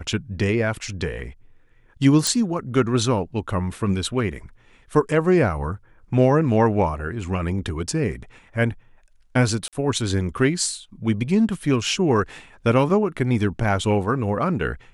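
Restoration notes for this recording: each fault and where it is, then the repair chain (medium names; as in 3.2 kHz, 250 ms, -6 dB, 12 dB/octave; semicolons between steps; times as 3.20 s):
2.27 s: pop
9.68–9.73 s: dropout 47 ms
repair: de-click; interpolate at 9.68 s, 47 ms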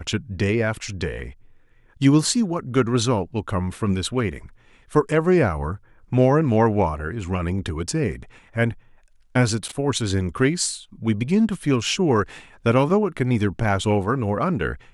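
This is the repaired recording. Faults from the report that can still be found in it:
nothing left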